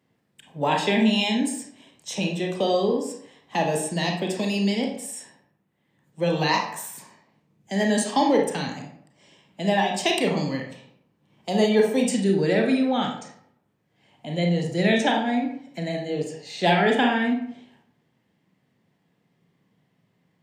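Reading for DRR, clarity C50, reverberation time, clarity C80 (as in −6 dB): 1.0 dB, 4.5 dB, 0.65 s, 9.0 dB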